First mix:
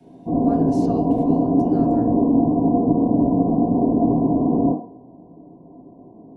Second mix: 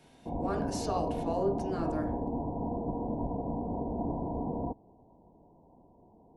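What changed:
speech +6.0 dB; background: send off

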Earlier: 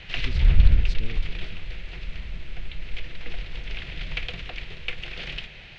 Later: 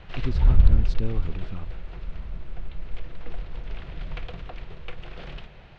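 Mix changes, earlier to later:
speech +8.5 dB; master: add resonant high shelf 1.6 kHz -10.5 dB, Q 1.5

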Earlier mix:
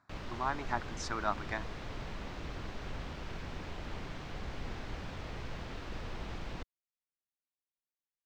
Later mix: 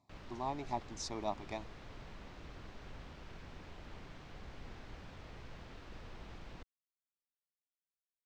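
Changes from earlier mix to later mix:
speech: add Butterworth band-stop 1.5 kHz, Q 0.96; background -9.0 dB

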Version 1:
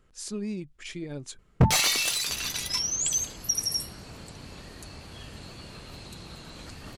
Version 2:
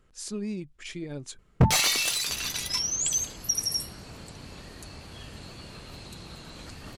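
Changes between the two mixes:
no change

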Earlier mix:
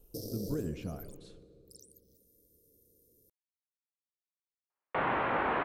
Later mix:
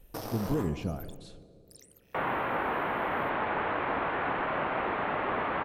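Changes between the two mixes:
speech +6.0 dB; first sound: remove elliptic band-stop 480–4700 Hz; second sound: entry -2.80 s

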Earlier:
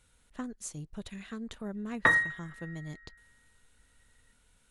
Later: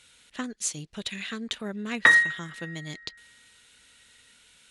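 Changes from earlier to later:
speech +5.5 dB; master: add frequency weighting D

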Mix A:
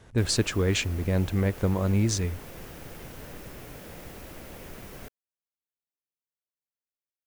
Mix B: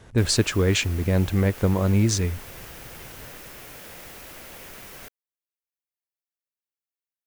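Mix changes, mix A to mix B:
speech +4.0 dB; background: add tilt shelf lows -6 dB, about 650 Hz

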